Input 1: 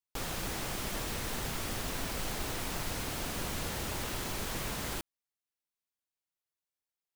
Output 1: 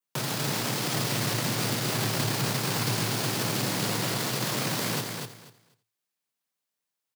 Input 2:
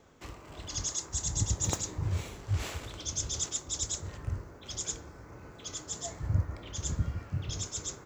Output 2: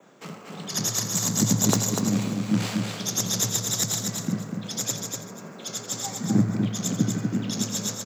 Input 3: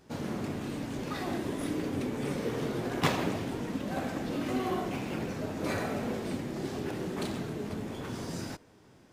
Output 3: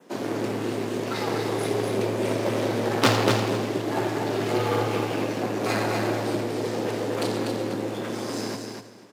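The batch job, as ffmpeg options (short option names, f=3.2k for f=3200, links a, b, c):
-filter_complex "[0:a]adynamicequalizer=threshold=0.00224:dfrequency=4600:dqfactor=2.6:tfrequency=4600:tqfactor=2.6:attack=5:release=100:ratio=0.375:range=2.5:mode=boostabove:tftype=bell,aeval=exprs='0.335*(cos(1*acos(clip(val(0)/0.335,-1,1)))-cos(1*PI/2))+0.0841*(cos(4*acos(clip(val(0)/0.335,-1,1)))-cos(4*PI/2))+0.0168*(cos(8*acos(clip(val(0)/0.335,-1,1)))-cos(8*PI/2))':c=same,asplit=2[a][b];[b]aecho=0:1:85:0.211[c];[a][c]amix=inputs=2:normalize=0,afreqshift=110,asplit=2[d][e];[e]aecho=0:1:244|488|732:0.562|0.107|0.0203[f];[d][f]amix=inputs=2:normalize=0,volume=5.5dB"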